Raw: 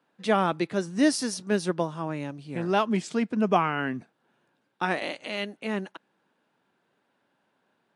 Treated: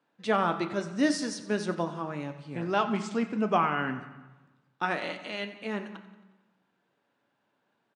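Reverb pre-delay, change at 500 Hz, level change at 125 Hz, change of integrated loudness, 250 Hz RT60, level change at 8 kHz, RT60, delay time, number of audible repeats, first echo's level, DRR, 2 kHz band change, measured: 7 ms, -3.0 dB, -3.5 dB, -2.5 dB, 1.3 s, -5.5 dB, 1.2 s, 90 ms, 4, -16.0 dB, 6.5 dB, -1.5 dB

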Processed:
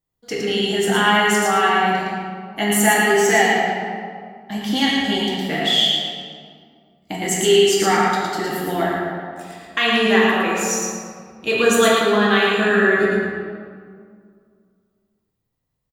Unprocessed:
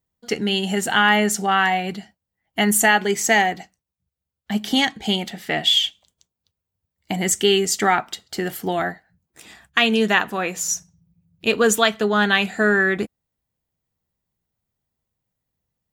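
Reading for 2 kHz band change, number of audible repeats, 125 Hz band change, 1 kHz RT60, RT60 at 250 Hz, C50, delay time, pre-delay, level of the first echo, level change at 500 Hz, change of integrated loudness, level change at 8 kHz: +1.5 dB, 1, +2.0 dB, 2.1 s, 2.4 s, -2.0 dB, 0.112 s, 4 ms, -3.5 dB, +5.0 dB, +2.0 dB, 0.0 dB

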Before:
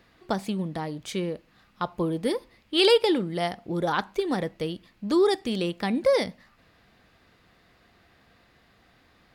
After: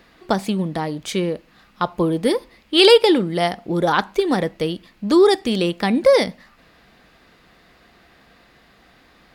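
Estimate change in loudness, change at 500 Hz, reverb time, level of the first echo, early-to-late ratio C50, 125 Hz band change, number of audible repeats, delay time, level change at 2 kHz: +8.0 dB, +8.0 dB, none, none, none, +7.0 dB, none, none, +8.0 dB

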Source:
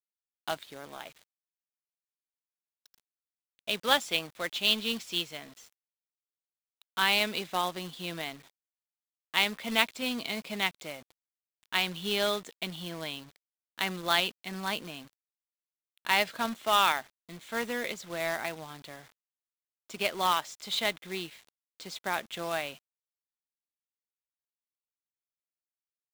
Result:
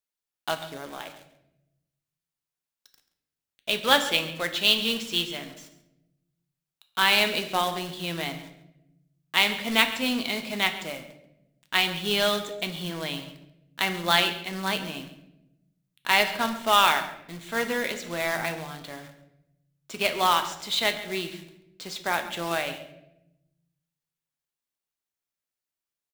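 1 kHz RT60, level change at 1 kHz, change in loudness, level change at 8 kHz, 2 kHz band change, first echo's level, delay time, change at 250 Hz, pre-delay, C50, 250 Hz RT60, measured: 0.70 s, +5.0 dB, +5.0 dB, +5.0 dB, +5.5 dB, -16.0 dB, 0.136 s, +5.5 dB, 7 ms, 10.5 dB, 1.3 s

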